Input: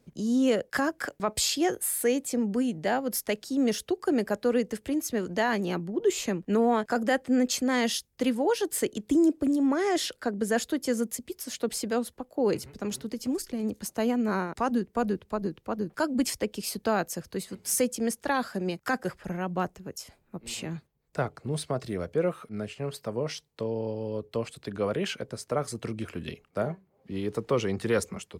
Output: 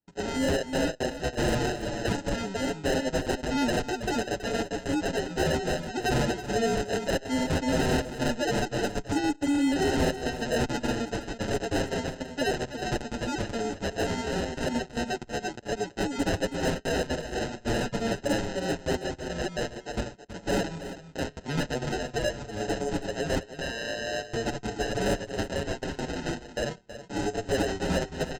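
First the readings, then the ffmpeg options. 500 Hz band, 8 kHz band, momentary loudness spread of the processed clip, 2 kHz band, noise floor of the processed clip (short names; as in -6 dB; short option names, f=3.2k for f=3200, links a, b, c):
-0.5 dB, -4.0 dB, 6 LU, +2.5 dB, -48 dBFS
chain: -filter_complex "[0:a]lowpass=5.1k,agate=range=-32dB:threshold=-52dB:ratio=16:detection=peak,highpass=f=490:p=1,highshelf=f=1.9k:t=q:w=1.5:g=13.5,aecho=1:1:7.3:0.67,asplit=2[a][b];[b]acompressor=threshold=-30dB:ratio=20,volume=-1dB[c];[a][c]amix=inputs=2:normalize=0,aeval=exprs='(mod(3.35*val(0)+1,2)-1)/3.35':c=same,aresample=16000,acrusher=samples=14:mix=1:aa=0.000001,aresample=44100,asoftclip=type=tanh:threshold=-20.5dB,aecho=1:1:324:0.251,asplit=2[d][e];[e]adelay=6.8,afreqshift=-0.44[f];[d][f]amix=inputs=2:normalize=1,volume=2.5dB"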